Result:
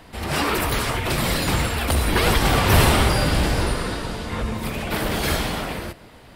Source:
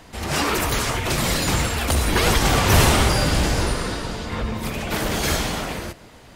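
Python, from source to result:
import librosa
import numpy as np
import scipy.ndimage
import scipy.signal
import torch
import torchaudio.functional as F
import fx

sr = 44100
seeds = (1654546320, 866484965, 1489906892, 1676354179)

y = fx.peak_eq(x, sr, hz=6500.0, db=-8.5, octaves=0.51)
y = fx.dmg_noise_band(y, sr, seeds[0], low_hz=880.0, high_hz=11000.0, level_db=-49.0, at=(3.65, 4.88), fade=0.02)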